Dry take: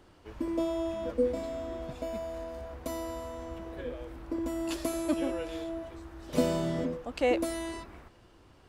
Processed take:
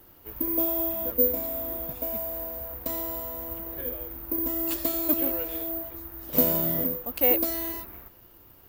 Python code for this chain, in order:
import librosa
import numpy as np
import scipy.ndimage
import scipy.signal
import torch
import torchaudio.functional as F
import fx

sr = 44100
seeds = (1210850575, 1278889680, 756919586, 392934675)

y = (np.kron(x[::3], np.eye(3)[0]) * 3)[:len(x)]